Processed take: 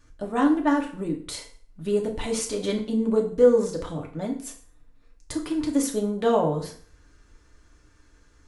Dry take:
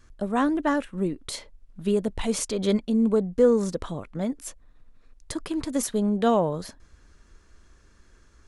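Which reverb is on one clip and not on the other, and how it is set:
feedback delay network reverb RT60 0.47 s, low-frequency decay 0.95×, high-frequency decay 0.9×, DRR 0 dB
level −3 dB

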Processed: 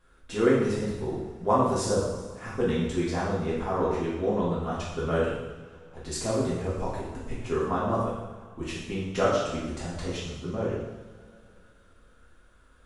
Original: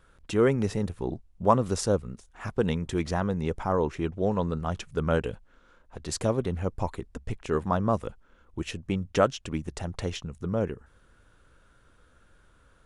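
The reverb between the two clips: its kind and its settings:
coupled-rooms reverb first 0.96 s, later 3 s, from −18 dB, DRR −8.5 dB
level −8 dB

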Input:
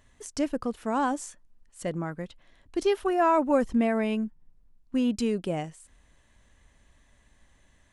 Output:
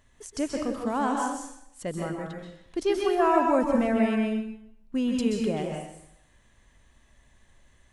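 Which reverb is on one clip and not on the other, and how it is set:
dense smooth reverb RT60 0.75 s, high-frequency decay 0.95×, pre-delay 115 ms, DRR 0.5 dB
level −1.5 dB

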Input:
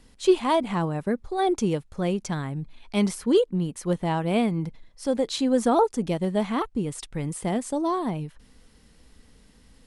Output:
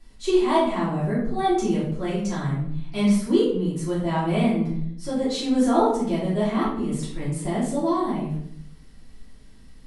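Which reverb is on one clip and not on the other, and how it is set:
rectangular room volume 130 cubic metres, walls mixed, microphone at 3 metres
level −9.5 dB

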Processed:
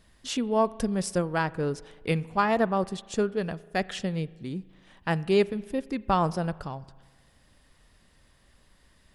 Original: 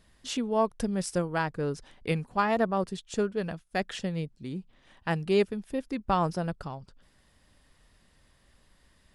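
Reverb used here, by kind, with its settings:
spring reverb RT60 1.5 s, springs 37 ms, chirp 50 ms, DRR 19.5 dB
level +2 dB

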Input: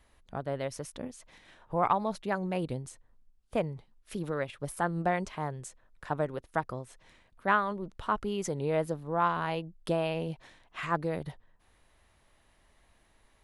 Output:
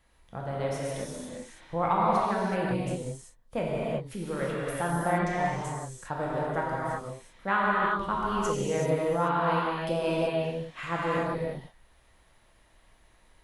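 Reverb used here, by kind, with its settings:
reverb whose tail is shaped and stops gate 410 ms flat, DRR −6 dB
level −3 dB

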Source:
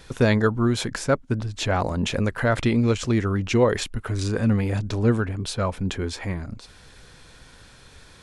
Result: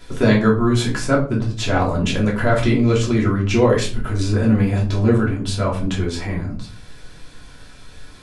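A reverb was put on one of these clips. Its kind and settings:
rectangular room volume 250 cubic metres, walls furnished, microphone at 3 metres
level −1.5 dB

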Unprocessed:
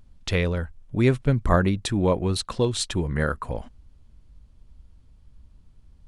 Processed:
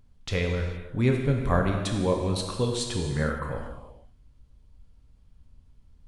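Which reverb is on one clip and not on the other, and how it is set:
reverb whose tail is shaped and stops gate 490 ms falling, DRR 1 dB
level −5.5 dB

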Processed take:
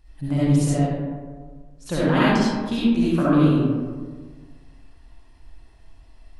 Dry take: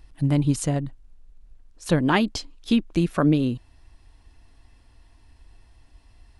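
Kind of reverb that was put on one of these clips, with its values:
comb and all-pass reverb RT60 1.6 s, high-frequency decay 0.4×, pre-delay 25 ms, DRR −10 dB
level −7.5 dB

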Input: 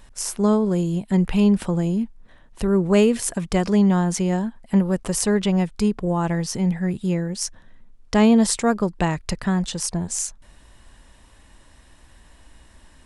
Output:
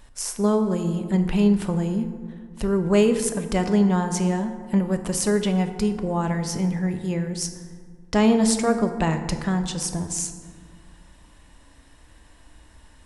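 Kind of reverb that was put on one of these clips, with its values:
feedback delay network reverb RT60 1.8 s, low-frequency decay 1.35×, high-frequency decay 0.45×, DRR 6.5 dB
level −2 dB

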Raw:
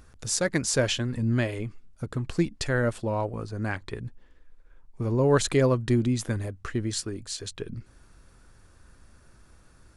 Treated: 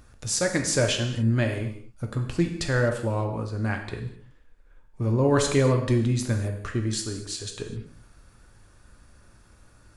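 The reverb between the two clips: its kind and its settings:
reverb whose tail is shaped and stops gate 280 ms falling, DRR 3 dB

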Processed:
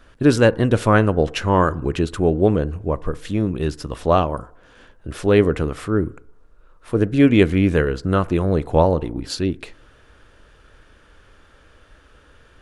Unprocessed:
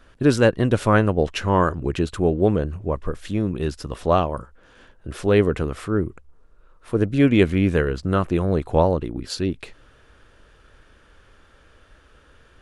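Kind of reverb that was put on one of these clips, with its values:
feedback delay network reverb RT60 0.73 s, low-frequency decay 0.75×, high-frequency decay 0.25×, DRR 18 dB
level +2 dB

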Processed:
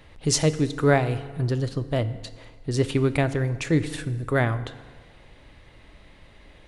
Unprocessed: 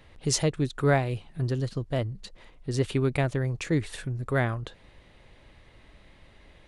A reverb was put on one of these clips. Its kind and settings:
feedback delay network reverb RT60 1.6 s, low-frequency decay 0.9×, high-frequency decay 0.7×, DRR 12 dB
level +3.5 dB

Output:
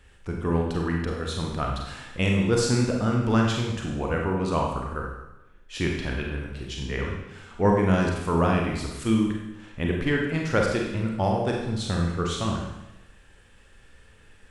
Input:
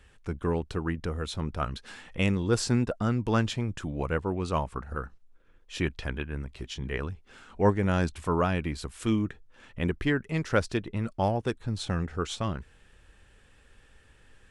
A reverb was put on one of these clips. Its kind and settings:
four-comb reverb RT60 0.93 s, combs from 32 ms, DRR −0.5 dB
level +1 dB

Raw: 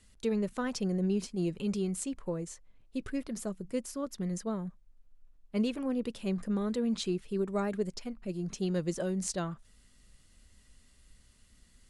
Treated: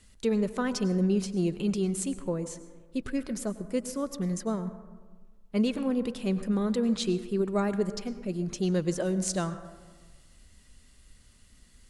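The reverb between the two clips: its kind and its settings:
dense smooth reverb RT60 1.4 s, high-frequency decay 0.35×, pre-delay 85 ms, DRR 12.5 dB
level +4 dB

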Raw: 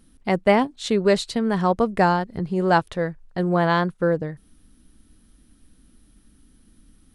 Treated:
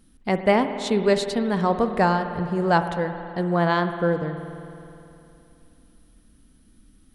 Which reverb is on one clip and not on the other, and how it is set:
spring reverb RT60 2.9 s, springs 52 ms, chirp 60 ms, DRR 8 dB
level −1.5 dB

